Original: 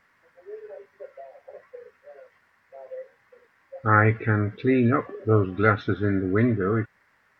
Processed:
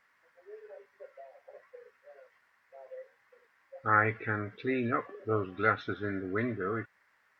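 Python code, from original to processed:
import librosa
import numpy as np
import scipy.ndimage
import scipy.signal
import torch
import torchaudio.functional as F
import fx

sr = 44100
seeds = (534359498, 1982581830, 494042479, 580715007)

y = fx.low_shelf(x, sr, hz=350.0, db=-11.5)
y = y * 10.0 ** (-4.5 / 20.0)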